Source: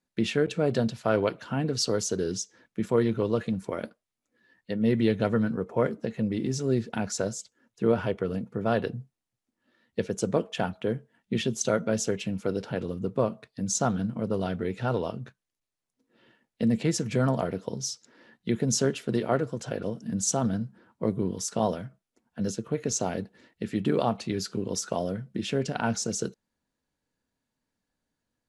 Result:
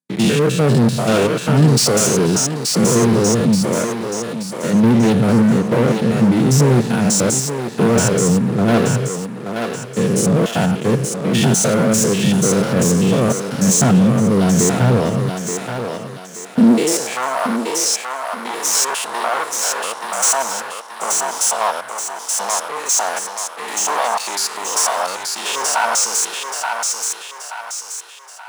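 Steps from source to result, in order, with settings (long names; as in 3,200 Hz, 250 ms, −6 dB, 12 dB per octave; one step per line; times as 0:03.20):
spectrum averaged block by block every 100 ms
parametric band 9,200 Hz +13.5 dB 0.88 octaves
leveller curve on the samples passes 5
high-pass filter sweep 140 Hz → 940 Hz, 0:16.47–0:17.18
on a send: feedback echo with a high-pass in the loop 878 ms, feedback 45%, high-pass 480 Hz, level −3.5 dB
on the sum: level −1.5 dB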